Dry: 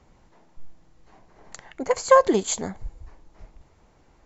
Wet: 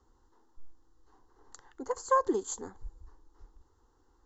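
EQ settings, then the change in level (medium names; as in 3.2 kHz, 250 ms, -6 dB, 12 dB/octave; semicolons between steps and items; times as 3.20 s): static phaser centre 630 Hz, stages 6; dynamic bell 3.9 kHz, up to -6 dB, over -45 dBFS, Q 1.1; -7.5 dB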